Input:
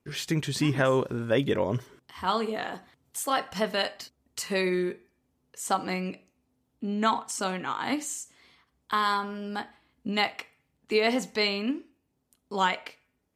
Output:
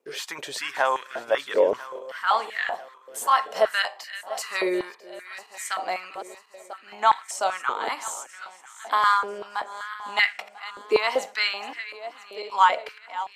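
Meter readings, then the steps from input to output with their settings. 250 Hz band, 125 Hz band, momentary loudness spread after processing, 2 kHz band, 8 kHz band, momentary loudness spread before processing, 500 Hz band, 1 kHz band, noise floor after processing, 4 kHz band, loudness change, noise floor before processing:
−9.5 dB, below −20 dB, 18 LU, +5.5 dB, +0.5 dB, 14 LU, +2.5 dB, +6.5 dB, −51 dBFS, +1.5 dB, +3.5 dB, −75 dBFS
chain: feedback delay that plays each chunk backwards 497 ms, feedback 64%, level −14 dB
high-pass on a step sequencer 5.2 Hz 470–1,800 Hz

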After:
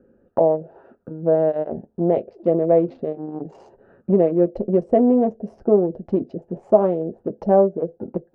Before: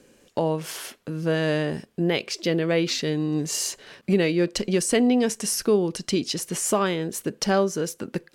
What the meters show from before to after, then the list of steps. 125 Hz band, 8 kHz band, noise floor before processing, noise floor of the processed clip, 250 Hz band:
−0.5 dB, below −40 dB, −60 dBFS, −63 dBFS, +2.5 dB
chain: adaptive Wiener filter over 41 samples
notch comb filter 150 Hz
envelope-controlled low-pass 650–1,300 Hz down, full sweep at −27.5 dBFS
level +2.5 dB

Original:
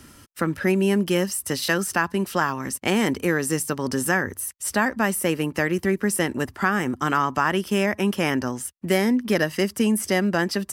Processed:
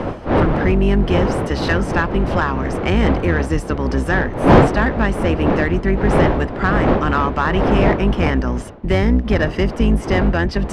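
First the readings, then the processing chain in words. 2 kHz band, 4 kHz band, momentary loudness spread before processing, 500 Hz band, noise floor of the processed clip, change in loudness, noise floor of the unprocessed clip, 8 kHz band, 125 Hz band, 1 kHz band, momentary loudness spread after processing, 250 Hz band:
+3.0 dB, +0.5 dB, 5 LU, +6.5 dB, −29 dBFS, +6.0 dB, −52 dBFS, −12.0 dB, +11.5 dB, +6.5 dB, 5 LU, +5.5 dB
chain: sub-octave generator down 2 octaves, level +3 dB
wind on the microphone 540 Hz −22 dBFS
reversed playback
upward compression, threshold −20 dBFS
reversed playback
log-companded quantiser 8 bits
low-pass filter 3,400 Hz 12 dB per octave
in parallel at +3 dB: soft clipping −16 dBFS, distortion −9 dB
on the sum: level −3 dB

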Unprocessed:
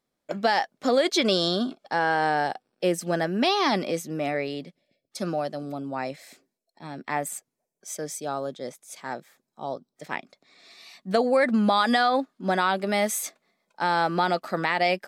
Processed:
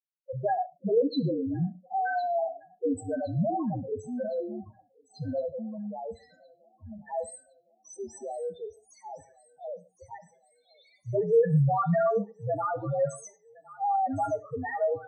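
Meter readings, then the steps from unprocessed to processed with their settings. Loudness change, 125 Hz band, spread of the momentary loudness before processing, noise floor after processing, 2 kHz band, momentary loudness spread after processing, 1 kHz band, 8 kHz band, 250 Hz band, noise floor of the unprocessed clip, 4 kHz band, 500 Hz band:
−4.0 dB, +5.0 dB, 17 LU, −68 dBFS, −14.5 dB, 21 LU, −5.5 dB, −13.5 dB, −5.0 dB, −83 dBFS, below −20 dB, −2.0 dB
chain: downward expander −48 dBFS
spectral peaks only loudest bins 2
delay with a high-pass on its return 1,062 ms, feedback 54%, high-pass 1,400 Hz, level −14 dB
reverb whose tail is shaped and stops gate 160 ms falling, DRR 12 dB
frequency shifter −69 Hz

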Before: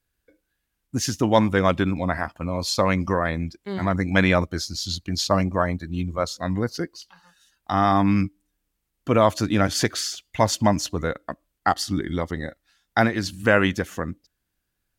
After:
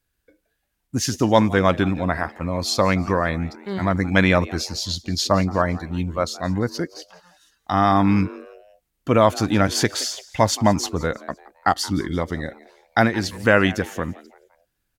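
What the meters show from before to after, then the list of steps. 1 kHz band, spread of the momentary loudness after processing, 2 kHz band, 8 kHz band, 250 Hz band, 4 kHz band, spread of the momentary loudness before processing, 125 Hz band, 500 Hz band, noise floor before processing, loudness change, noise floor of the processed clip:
+2.0 dB, 13 LU, +2.0 dB, +2.0 dB, +2.0 dB, +2.0 dB, 11 LU, +2.0 dB, +2.0 dB, −78 dBFS, +2.0 dB, −75 dBFS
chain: echo with shifted repeats 172 ms, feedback 42%, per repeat +140 Hz, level −20 dB
level +2 dB

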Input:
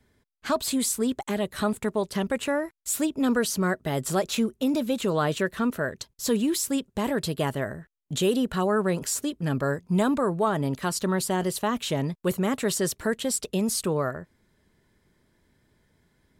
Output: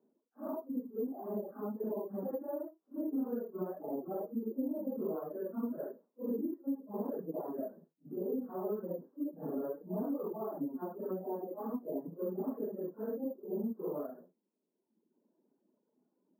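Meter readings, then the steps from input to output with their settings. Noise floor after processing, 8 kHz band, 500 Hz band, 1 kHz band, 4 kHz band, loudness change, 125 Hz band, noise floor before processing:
−84 dBFS, below −40 dB, −10.5 dB, −16.5 dB, below −40 dB, −12.5 dB, −19.5 dB, −70 dBFS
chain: random phases in long frames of 200 ms
reverb reduction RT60 1.2 s
Butterworth high-pass 220 Hz 36 dB per octave
downward compressor, threshold −30 dBFS, peak gain reduction 11.5 dB
Gaussian smoothing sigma 11 samples
decimation without filtering 3×
level −1 dB

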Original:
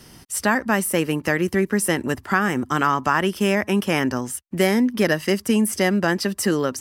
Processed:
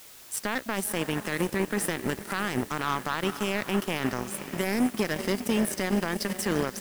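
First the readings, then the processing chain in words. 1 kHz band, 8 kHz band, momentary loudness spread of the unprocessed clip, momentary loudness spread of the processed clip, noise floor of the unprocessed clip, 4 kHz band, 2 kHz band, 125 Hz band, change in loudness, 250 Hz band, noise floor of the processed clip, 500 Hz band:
−8.5 dB, −6.5 dB, 3 LU, 4 LU, −49 dBFS, −5.5 dB, −8.5 dB, −7.5 dB, −8.0 dB, −8.0 dB, −47 dBFS, −8.5 dB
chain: on a send: feedback delay with all-pass diffusion 518 ms, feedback 50%, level −11 dB
on the sum: brickwall limiter −15 dBFS, peak gain reduction 10.5 dB
power curve on the samples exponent 2
background noise white −49 dBFS

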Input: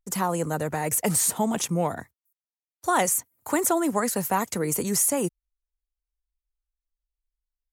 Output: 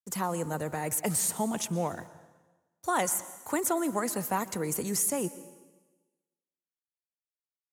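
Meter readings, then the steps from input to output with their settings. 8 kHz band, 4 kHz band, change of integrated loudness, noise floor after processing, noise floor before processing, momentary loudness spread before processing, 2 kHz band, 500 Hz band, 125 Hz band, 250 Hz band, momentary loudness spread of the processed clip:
−5.5 dB, −5.5 dB, −5.5 dB, below −85 dBFS, below −85 dBFS, 7 LU, −5.5 dB, −5.5 dB, −5.5 dB, −5.5 dB, 7 LU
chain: bit reduction 10 bits
dense smooth reverb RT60 1.2 s, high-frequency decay 0.95×, pre-delay 105 ms, DRR 15.5 dB
level −5.5 dB

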